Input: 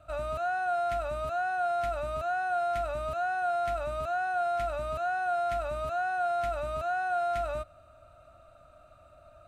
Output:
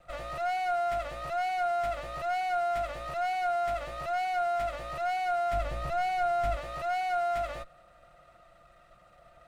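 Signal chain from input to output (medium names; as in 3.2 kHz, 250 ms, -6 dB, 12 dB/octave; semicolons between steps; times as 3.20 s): comb filter that takes the minimum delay 5.7 ms; 5.53–6.57 s: bass shelf 230 Hz +11 dB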